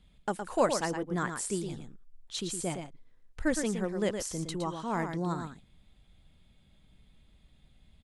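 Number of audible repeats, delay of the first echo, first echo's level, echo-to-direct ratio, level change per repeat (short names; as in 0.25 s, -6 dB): 1, 0.114 s, -7.0 dB, -7.0 dB, no steady repeat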